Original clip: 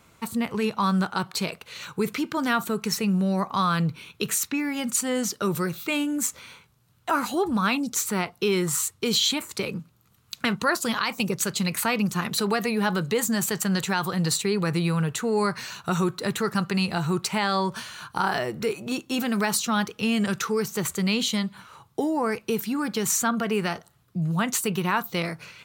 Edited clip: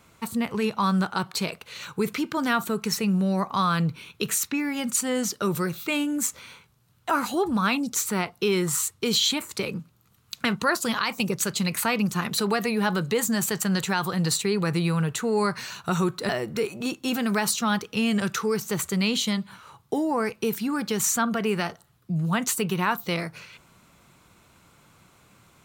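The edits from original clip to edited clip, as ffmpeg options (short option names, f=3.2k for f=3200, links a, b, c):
-filter_complex "[0:a]asplit=2[a][b];[a]atrim=end=16.292[c];[b]atrim=start=18.348[d];[c][d]acrossfade=d=0.004:c1=hsin:c2=hsin"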